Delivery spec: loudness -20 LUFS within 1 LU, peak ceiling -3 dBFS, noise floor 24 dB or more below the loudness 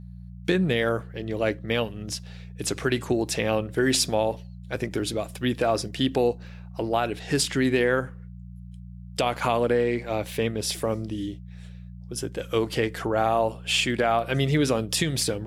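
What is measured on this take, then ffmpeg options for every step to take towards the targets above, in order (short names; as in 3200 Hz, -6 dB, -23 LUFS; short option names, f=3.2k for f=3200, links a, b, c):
hum 60 Hz; harmonics up to 180 Hz; hum level -39 dBFS; loudness -25.5 LUFS; peak -10.0 dBFS; loudness target -20.0 LUFS
-> -af "bandreject=f=60:t=h:w=4,bandreject=f=120:t=h:w=4,bandreject=f=180:t=h:w=4"
-af "volume=5.5dB"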